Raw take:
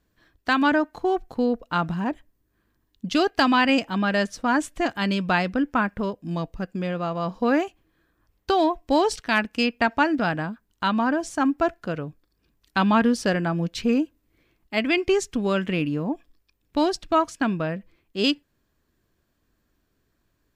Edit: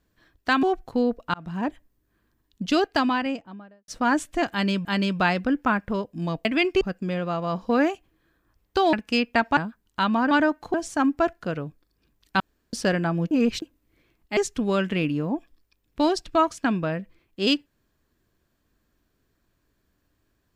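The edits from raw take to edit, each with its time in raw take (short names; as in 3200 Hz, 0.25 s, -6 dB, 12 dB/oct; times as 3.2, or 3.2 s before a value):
0.63–1.06 move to 11.15
1.77–2.09 fade in
3.06–4.31 studio fade out
4.94–5.28 loop, 2 plays
8.66–9.39 cut
10.03–10.41 cut
12.81–13.14 room tone
13.72–14.03 reverse
14.78–15.14 move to 6.54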